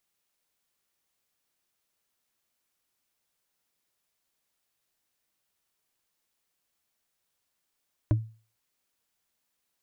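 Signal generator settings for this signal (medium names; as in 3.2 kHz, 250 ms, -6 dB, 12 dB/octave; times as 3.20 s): wood hit, lowest mode 111 Hz, decay 0.37 s, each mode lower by 6 dB, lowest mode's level -16.5 dB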